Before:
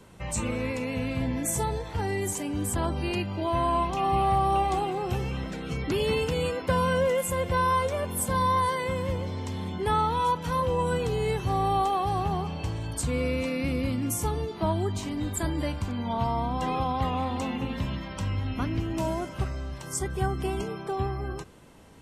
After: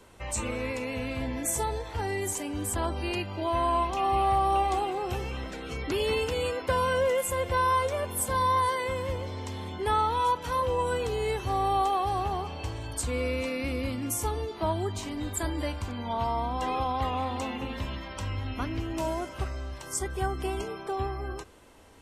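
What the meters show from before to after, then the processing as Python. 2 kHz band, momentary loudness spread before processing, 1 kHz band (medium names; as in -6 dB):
0.0 dB, 8 LU, -0.5 dB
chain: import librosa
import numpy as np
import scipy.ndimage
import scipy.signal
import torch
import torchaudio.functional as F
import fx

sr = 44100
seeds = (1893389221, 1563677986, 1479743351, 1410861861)

y = fx.peak_eq(x, sr, hz=160.0, db=-13.5, octaves=0.88)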